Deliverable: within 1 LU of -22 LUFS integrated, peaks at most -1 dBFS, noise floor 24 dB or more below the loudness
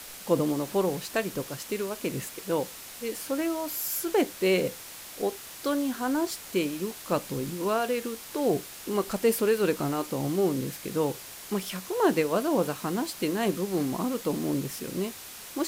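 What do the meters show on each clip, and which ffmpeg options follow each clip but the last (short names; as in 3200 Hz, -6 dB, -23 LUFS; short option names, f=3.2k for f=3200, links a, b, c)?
noise floor -44 dBFS; noise floor target -53 dBFS; loudness -29.0 LUFS; peak -10.5 dBFS; loudness target -22.0 LUFS
-> -af "afftdn=nr=9:nf=-44"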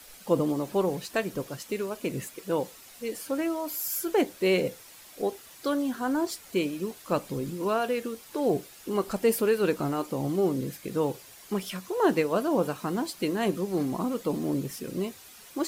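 noise floor -50 dBFS; noise floor target -54 dBFS
-> -af "afftdn=nr=6:nf=-50"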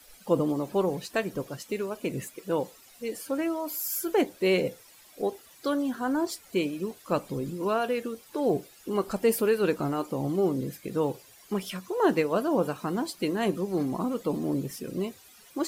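noise floor -55 dBFS; loudness -29.5 LUFS; peak -10.5 dBFS; loudness target -22.0 LUFS
-> -af "volume=7.5dB"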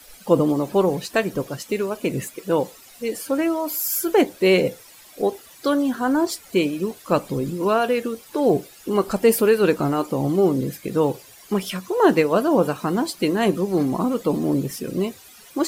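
loudness -22.0 LUFS; peak -3.0 dBFS; noise floor -47 dBFS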